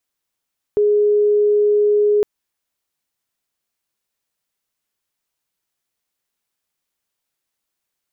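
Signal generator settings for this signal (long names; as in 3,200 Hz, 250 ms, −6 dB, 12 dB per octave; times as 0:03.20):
tone sine 416 Hz −11.5 dBFS 1.46 s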